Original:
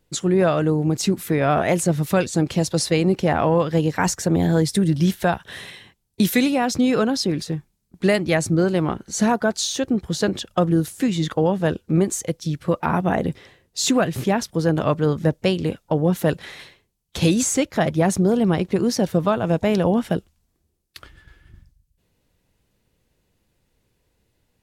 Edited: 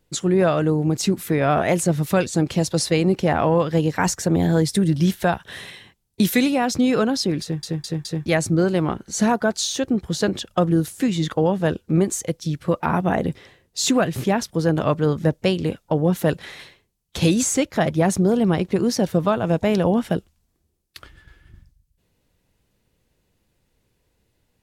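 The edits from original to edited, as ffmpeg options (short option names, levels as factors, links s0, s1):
-filter_complex "[0:a]asplit=5[s0][s1][s2][s3][s4];[s0]atrim=end=7.632[s5];[s1]atrim=start=7.418:end=7.632[s6];[s2]atrim=start=7.418:end=7.632[s7];[s3]atrim=start=7.418:end=7.632[s8];[s4]atrim=start=8.258[s9];[s5][s6]acrossfade=d=0.004:c1=hsin:c2=hsin[s10];[s10][s7]acrossfade=d=0.004:c1=hsin:c2=hsin[s11];[s11][s8]acrossfade=d=0.004:c1=hsin:c2=hsin[s12];[s12][s9]acrossfade=d=0.004:c1=hsin:c2=hsin"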